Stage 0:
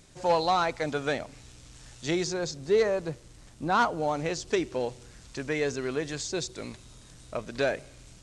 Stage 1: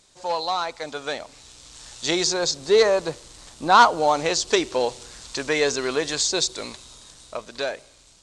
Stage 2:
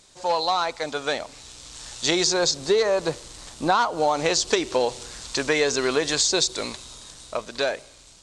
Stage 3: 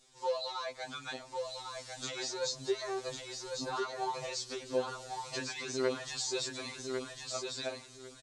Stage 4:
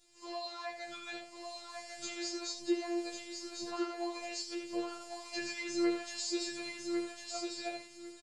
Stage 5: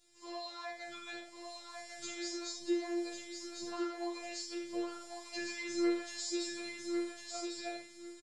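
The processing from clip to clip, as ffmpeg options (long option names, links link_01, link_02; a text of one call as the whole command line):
ffmpeg -i in.wav -af "lowshelf=frequency=420:gain=-3,dynaudnorm=framelen=310:gausssize=11:maxgain=12.5dB,equalizer=frequency=125:width_type=o:width=1:gain=-5,equalizer=frequency=500:width_type=o:width=1:gain=3,equalizer=frequency=1000:width_type=o:width=1:gain=7,equalizer=frequency=4000:width_type=o:width=1:gain=9,equalizer=frequency=8000:width_type=o:width=1:gain=7,volume=-6.5dB" out.wav
ffmpeg -i in.wav -af "acompressor=threshold=-20dB:ratio=12,volume=3.5dB" out.wav
ffmpeg -i in.wav -af "alimiter=limit=-14dB:level=0:latency=1:release=386,aecho=1:1:1100|2200|3300:0.562|0.112|0.0225,afftfilt=real='re*2.45*eq(mod(b,6),0)':imag='im*2.45*eq(mod(b,6),0)':win_size=2048:overlap=0.75,volume=-8.5dB" out.wav
ffmpeg -i in.wav -filter_complex "[0:a]afftfilt=real='hypot(re,im)*cos(PI*b)':imag='0':win_size=512:overlap=0.75,asplit=2[link_01][link_02];[link_02]aecho=0:1:17|78:0.562|0.398[link_03];[link_01][link_03]amix=inputs=2:normalize=0" out.wav
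ffmpeg -i in.wav -filter_complex "[0:a]asplit=2[link_01][link_02];[link_02]adelay=43,volume=-6dB[link_03];[link_01][link_03]amix=inputs=2:normalize=0,volume=-2.5dB" out.wav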